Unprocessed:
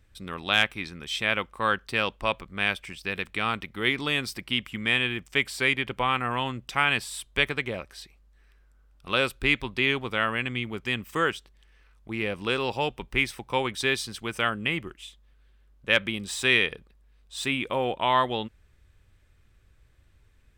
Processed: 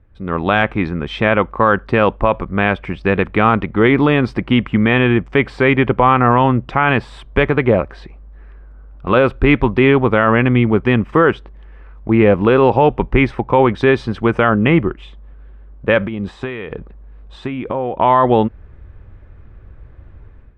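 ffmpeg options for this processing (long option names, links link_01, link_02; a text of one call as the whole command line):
ffmpeg -i in.wav -filter_complex "[0:a]asplit=3[link_01][link_02][link_03];[link_01]afade=type=out:start_time=16.05:duration=0.02[link_04];[link_02]acompressor=threshold=-37dB:ratio=6:attack=3.2:release=140:knee=1:detection=peak,afade=type=in:start_time=16.05:duration=0.02,afade=type=out:start_time=17.98:duration=0.02[link_05];[link_03]afade=type=in:start_time=17.98:duration=0.02[link_06];[link_04][link_05][link_06]amix=inputs=3:normalize=0,lowpass=1100,dynaudnorm=framelen=120:gausssize=5:maxgain=12dB,alimiter=level_in=10dB:limit=-1dB:release=50:level=0:latency=1,volume=-1dB" out.wav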